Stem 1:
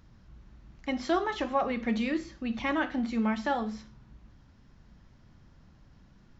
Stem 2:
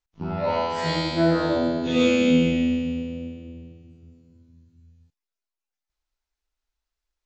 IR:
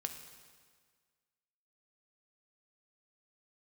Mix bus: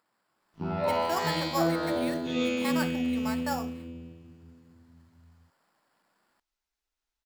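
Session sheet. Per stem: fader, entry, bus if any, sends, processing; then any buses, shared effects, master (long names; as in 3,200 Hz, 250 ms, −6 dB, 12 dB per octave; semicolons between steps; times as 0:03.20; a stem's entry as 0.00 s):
−2.0 dB, 0.00 s, no send, high-pass filter 770 Hz 12 dB per octave; high-shelf EQ 2,100 Hz −11.5 dB; sample-rate reduction 6,200 Hz, jitter 0%
−9.5 dB, 0.40 s, no send, notch filter 530 Hz, Q 12; speech leveller within 5 dB 0.5 s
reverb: not used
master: automatic gain control gain up to 4 dB; low-shelf EQ 76 Hz −9.5 dB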